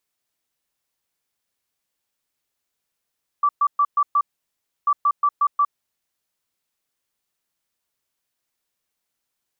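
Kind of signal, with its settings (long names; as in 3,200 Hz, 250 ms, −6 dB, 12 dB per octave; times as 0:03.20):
beeps in groups sine 1,160 Hz, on 0.06 s, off 0.12 s, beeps 5, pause 0.66 s, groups 2, −14 dBFS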